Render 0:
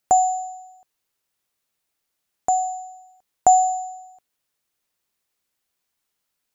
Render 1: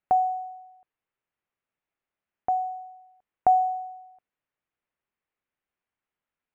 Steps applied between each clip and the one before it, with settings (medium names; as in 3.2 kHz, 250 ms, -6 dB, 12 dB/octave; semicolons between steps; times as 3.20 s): low-pass 2.6 kHz 24 dB/octave; trim -5 dB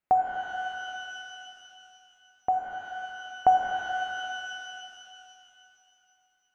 pitch-shifted reverb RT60 2.9 s, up +12 st, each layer -8 dB, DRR 2 dB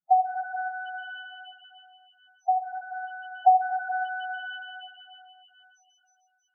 loudest bins only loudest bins 4; trim +2.5 dB